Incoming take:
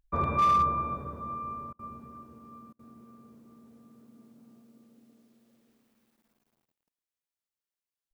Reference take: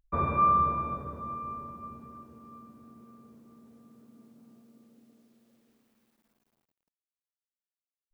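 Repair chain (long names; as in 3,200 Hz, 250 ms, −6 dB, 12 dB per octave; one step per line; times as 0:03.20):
clipped peaks rebuilt −19 dBFS
repair the gap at 0:01.73/0:02.73, 60 ms
echo removal 109 ms −19 dB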